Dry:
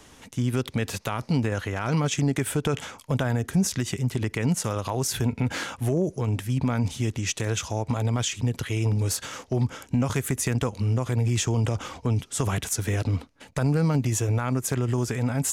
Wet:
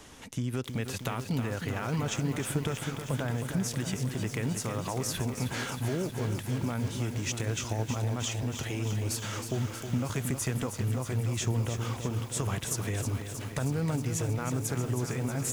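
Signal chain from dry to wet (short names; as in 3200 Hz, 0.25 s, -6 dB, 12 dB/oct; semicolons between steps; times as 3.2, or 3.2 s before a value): compressor 2:1, threshold -34 dBFS, peak gain reduction 9 dB; lo-fi delay 0.316 s, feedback 80%, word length 8-bit, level -7.5 dB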